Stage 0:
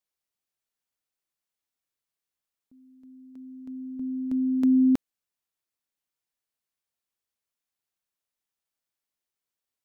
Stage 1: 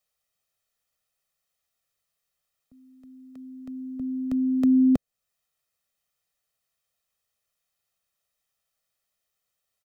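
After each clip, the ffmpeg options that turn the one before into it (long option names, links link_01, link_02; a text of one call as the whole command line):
ffmpeg -i in.wav -filter_complex "[0:a]aecho=1:1:1.6:0.63,acrossover=split=140|650[link_01][link_02][link_03];[link_03]alimiter=level_in=4dB:limit=-24dB:level=0:latency=1:release=365,volume=-4dB[link_04];[link_01][link_02][link_04]amix=inputs=3:normalize=0,volume=6dB" out.wav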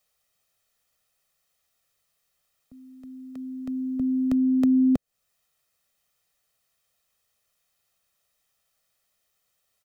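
ffmpeg -i in.wav -af "acompressor=threshold=-28dB:ratio=2.5,volume=6.5dB" out.wav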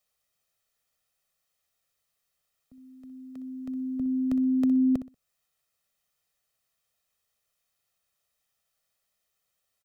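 ffmpeg -i in.wav -af "aecho=1:1:62|124|186:0.237|0.0593|0.0148,volume=-5dB" out.wav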